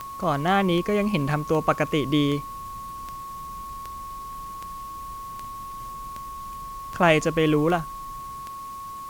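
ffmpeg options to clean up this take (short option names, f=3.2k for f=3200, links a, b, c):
-af "adeclick=t=4,bandreject=f=1.1k:w=30,afwtdn=0.0032"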